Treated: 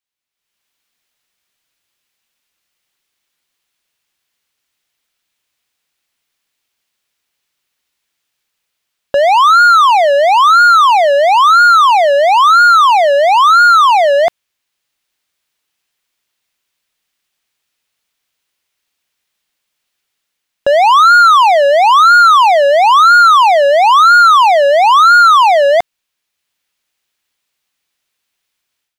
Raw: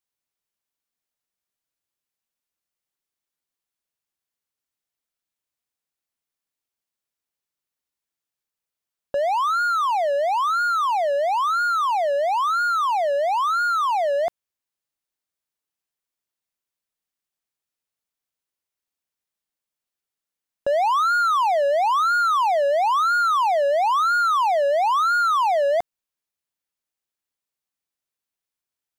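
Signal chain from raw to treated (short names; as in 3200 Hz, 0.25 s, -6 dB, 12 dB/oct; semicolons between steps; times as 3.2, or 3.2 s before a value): AGC gain up to 15 dB; bell 2800 Hz +8 dB 2.1 oct; gain -2.5 dB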